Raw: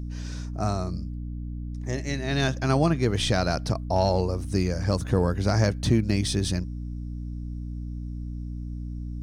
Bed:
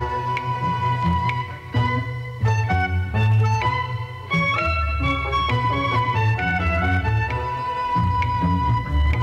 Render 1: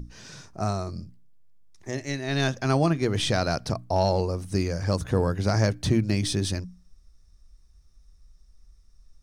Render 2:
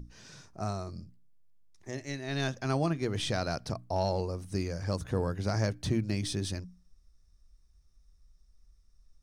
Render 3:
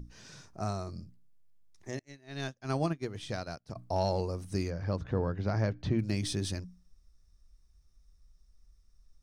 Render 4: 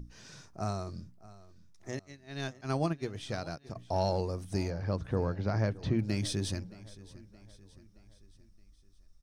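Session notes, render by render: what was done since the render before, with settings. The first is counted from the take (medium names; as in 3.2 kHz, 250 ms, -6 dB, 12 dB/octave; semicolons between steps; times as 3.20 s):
hum notches 60/120/180/240/300 Hz
trim -7 dB
1.99–3.76 s: upward expansion 2.5:1, over -45 dBFS; 4.70–5.99 s: distance through air 220 m
feedback delay 621 ms, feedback 50%, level -19.5 dB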